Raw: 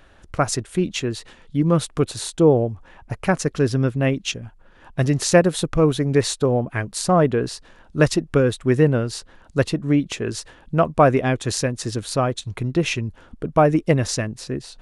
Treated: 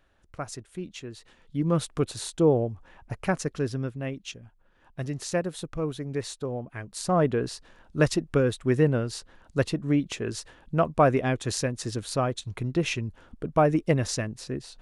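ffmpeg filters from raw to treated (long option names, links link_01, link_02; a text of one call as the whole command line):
ffmpeg -i in.wav -af "volume=1.5dB,afade=type=in:start_time=1.12:duration=0.66:silence=0.354813,afade=type=out:start_time=3.21:duration=0.78:silence=0.446684,afade=type=in:start_time=6.79:duration=0.46:silence=0.421697" out.wav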